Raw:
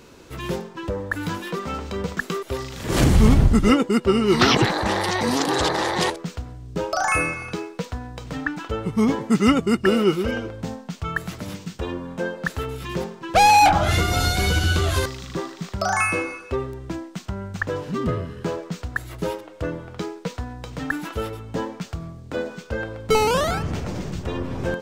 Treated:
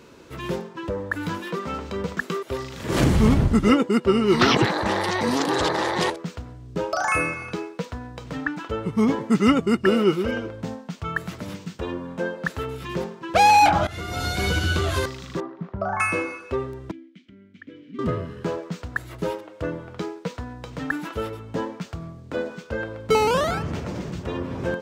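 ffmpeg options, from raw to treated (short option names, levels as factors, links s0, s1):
-filter_complex "[0:a]asettb=1/sr,asplit=3[s0][s1][s2];[s0]atrim=end=15.404[s3];[s1]atrim=start=15.4:end=16,asetpts=PTS-STARTPTS,afade=t=in:d=0.004:c=qsin,afade=t=out:st=0.596:d=0.004:c=qsin,lowpass=1100[s4];[s2]atrim=start=15.996[s5];[s3][s4]acrossfade=d=0.004:c1=hsin:c2=qsin[s6];[s6][s5]acrossfade=d=0.004:c1=qsin:c2=hsin,asettb=1/sr,asplit=3[s7][s8][s9];[s7]atrim=end=16.914[s10];[s8]atrim=start=16.91:end=17.99,asetpts=PTS-STARTPTS,afade=t=in:d=0.004:c=qsin,afade=t=out:st=1.076:d=0.004:c=qsin,asplit=3[s11][s12][s13];[s11]bandpass=f=270:t=q:w=8,volume=1[s14];[s12]bandpass=f=2290:t=q:w=8,volume=0.501[s15];[s13]bandpass=f=3010:t=q:w=8,volume=0.355[s16];[s14][s15][s16]amix=inputs=3:normalize=0[s17];[s9]atrim=start=17.986[s18];[s10][s17]acrossfade=d=0.004:c1=hsin:c2=qsin[s19];[s19][s18]acrossfade=d=0.004:c1=qsin:c2=hsin,asplit=2[s20][s21];[s20]atrim=end=13.87,asetpts=PTS-STARTPTS,afade=t=out:st=13.866:d=0.004:c=hsin:silence=0.112202[s22];[s21]atrim=start=13.87,asetpts=PTS-STARTPTS,afade=t=in:d=0.59:silence=0.112202[s23];[s22][s23]concat=n=2:v=0:a=1,highpass=f=95:p=1,highshelf=f=4100:g=-6,bandreject=f=760:w=17"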